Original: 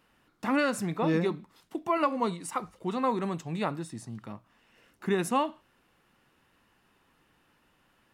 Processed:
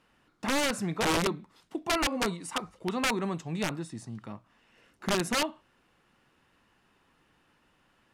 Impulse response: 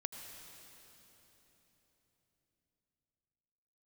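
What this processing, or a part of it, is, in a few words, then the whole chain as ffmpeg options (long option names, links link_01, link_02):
overflowing digital effects unit: -af "aeval=exprs='(mod(10.6*val(0)+1,2)-1)/10.6':channel_layout=same,lowpass=10000"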